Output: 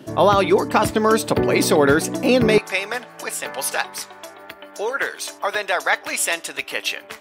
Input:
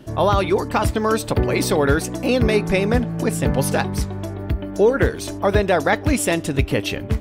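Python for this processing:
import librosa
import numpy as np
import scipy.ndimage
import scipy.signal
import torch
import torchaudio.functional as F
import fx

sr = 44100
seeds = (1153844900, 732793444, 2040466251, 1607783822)

y = fx.highpass(x, sr, hz=fx.steps((0.0, 170.0), (2.58, 970.0)), slope=12)
y = y * librosa.db_to_amplitude(3.0)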